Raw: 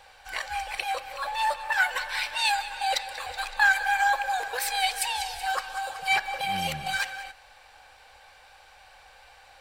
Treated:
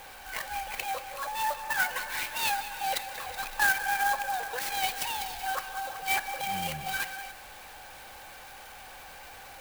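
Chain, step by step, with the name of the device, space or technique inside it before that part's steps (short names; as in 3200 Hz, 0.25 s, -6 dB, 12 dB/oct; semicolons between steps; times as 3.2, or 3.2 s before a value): early CD player with a faulty converter (zero-crossing step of -38.5 dBFS; clock jitter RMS 0.038 ms); gain -4.5 dB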